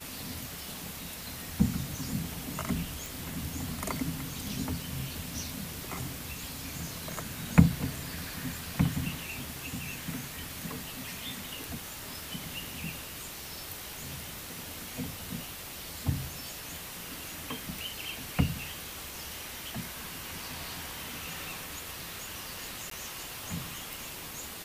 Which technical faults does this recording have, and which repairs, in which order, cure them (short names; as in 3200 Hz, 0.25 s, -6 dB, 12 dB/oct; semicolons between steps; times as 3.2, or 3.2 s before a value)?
3.06 pop
22.9–22.91 gap 13 ms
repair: de-click; interpolate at 22.9, 13 ms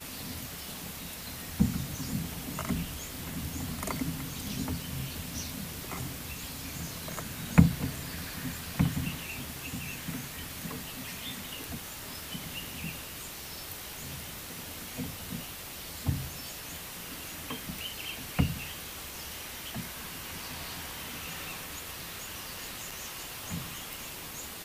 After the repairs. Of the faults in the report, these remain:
none